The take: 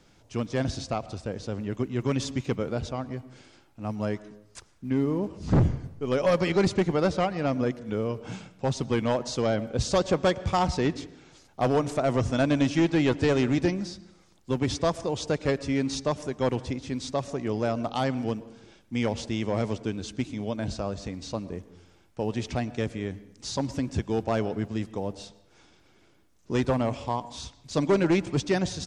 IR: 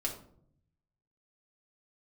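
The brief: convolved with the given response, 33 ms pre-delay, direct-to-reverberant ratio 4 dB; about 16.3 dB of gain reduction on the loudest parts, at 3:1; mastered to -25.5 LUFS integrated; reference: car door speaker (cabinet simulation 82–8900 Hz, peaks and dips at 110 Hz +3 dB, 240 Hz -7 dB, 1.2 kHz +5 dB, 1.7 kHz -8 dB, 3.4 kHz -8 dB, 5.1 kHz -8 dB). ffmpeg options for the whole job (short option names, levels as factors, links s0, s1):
-filter_complex "[0:a]acompressor=threshold=0.00794:ratio=3,asplit=2[s0][s1];[1:a]atrim=start_sample=2205,adelay=33[s2];[s1][s2]afir=irnorm=-1:irlink=0,volume=0.473[s3];[s0][s3]amix=inputs=2:normalize=0,highpass=82,equalizer=f=110:t=q:w=4:g=3,equalizer=f=240:t=q:w=4:g=-7,equalizer=f=1200:t=q:w=4:g=5,equalizer=f=1700:t=q:w=4:g=-8,equalizer=f=3400:t=q:w=4:g=-8,equalizer=f=5100:t=q:w=4:g=-8,lowpass=f=8900:w=0.5412,lowpass=f=8900:w=1.3066,volume=6.31"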